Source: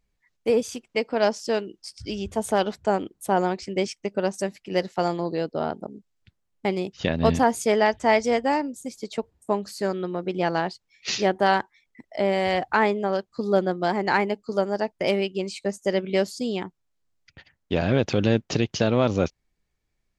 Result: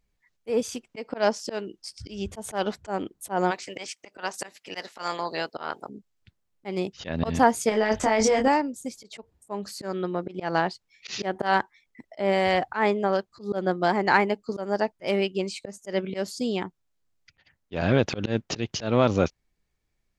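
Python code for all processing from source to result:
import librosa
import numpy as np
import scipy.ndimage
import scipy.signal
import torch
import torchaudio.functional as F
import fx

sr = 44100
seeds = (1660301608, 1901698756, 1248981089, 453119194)

y = fx.spec_clip(x, sr, under_db=14, at=(3.5, 5.88), fade=0.02)
y = fx.highpass(y, sr, hz=660.0, slope=6, at=(3.5, 5.88), fade=0.02)
y = fx.chain(y, sr, fx.transient(attack_db=-7, sustain_db=6),
    fx.over_compress(threshold_db=-24.0, ratio=-1.0),
    fx.doubler(ms=23.0, db=-3), at=(7.69, 8.48))
y = fx.dynamic_eq(y, sr, hz=1300.0, q=0.99, threshold_db=-35.0, ratio=4.0, max_db=3)
y = fx.auto_swell(y, sr, attack_ms=147.0)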